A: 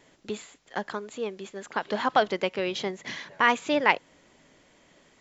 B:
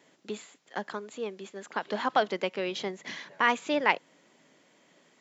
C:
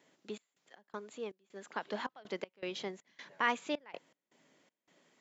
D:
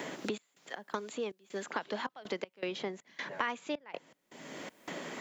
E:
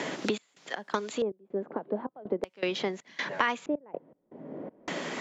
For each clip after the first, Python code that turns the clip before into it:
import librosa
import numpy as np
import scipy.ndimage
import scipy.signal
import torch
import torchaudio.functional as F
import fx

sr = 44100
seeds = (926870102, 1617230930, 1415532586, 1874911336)

y1 = scipy.signal.sosfilt(scipy.signal.butter(4, 150.0, 'highpass', fs=sr, output='sos'), x)
y1 = y1 * 10.0 ** (-3.0 / 20.0)
y2 = fx.step_gate(y1, sr, bpm=80, pattern='xx.x.xx.x', floor_db=-24.0, edge_ms=4.5)
y2 = y2 * 10.0 ** (-6.5 / 20.0)
y3 = fx.band_squash(y2, sr, depth_pct=100)
y3 = y3 * 10.0 ** (3.0 / 20.0)
y4 = fx.filter_lfo_lowpass(y3, sr, shape='square', hz=0.41, low_hz=530.0, high_hz=6200.0, q=0.99)
y4 = y4 * 10.0 ** (6.5 / 20.0)